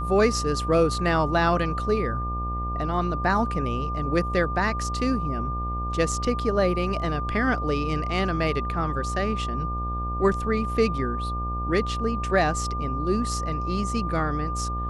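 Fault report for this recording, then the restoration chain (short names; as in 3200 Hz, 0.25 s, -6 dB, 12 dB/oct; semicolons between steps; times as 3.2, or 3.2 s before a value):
buzz 60 Hz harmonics 22 -30 dBFS
tone 1200 Hz -30 dBFS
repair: de-hum 60 Hz, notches 22; notch 1200 Hz, Q 30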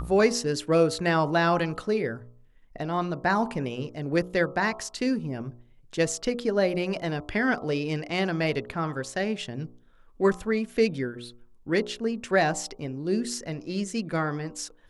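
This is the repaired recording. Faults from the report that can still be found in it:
none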